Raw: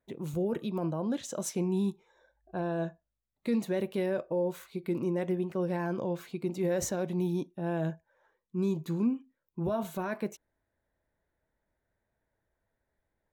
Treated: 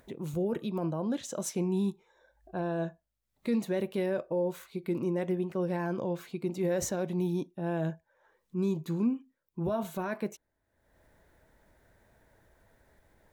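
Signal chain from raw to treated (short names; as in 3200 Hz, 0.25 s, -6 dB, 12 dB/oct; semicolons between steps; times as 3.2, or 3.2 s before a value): upward compressor, threshold -48 dBFS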